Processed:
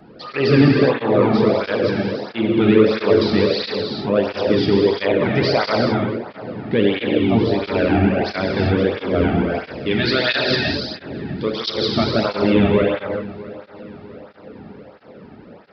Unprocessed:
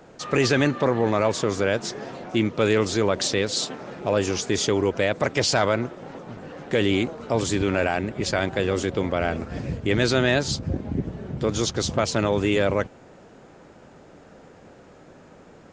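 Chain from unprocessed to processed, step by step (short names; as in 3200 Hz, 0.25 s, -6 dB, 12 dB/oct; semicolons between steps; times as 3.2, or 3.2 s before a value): 9.48–11.97 tilt +3 dB/oct; dark delay 0.649 s, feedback 52%, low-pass 2300 Hz, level -18 dB; reverb, pre-delay 3 ms, DRR -2 dB; downsampling 11025 Hz; low shelf 260 Hz +11 dB; tape flanging out of phase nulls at 1.5 Hz, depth 2.1 ms; gain +1.5 dB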